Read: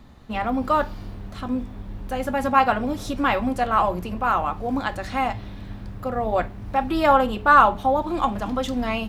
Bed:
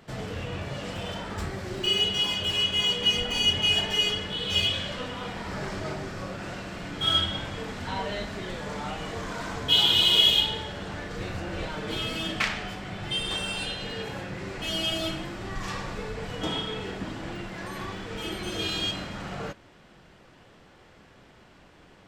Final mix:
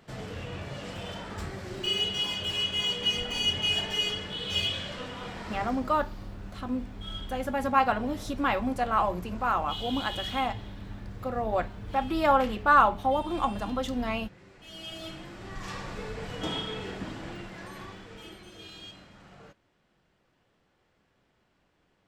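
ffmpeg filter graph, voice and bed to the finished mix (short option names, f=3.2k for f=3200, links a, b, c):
-filter_complex "[0:a]adelay=5200,volume=-5.5dB[a];[1:a]volume=11.5dB,afade=t=out:st=5.47:d=0.45:silence=0.199526,afade=t=in:st=14.63:d=1.46:silence=0.16788,afade=t=out:st=17.05:d=1.45:silence=0.199526[b];[a][b]amix=inputs=2:normalize=0"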